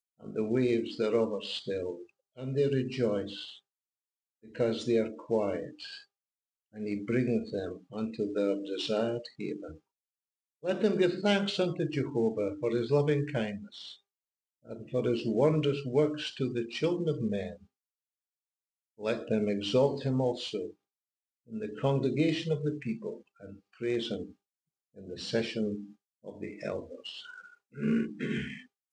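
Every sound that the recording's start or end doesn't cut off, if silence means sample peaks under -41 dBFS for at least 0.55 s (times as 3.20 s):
4.55–5.98 s
6.76–9.75 s
10.64–13.94 s
14.69–17.54 s
18.99–20.71 s
21.52–24.30 s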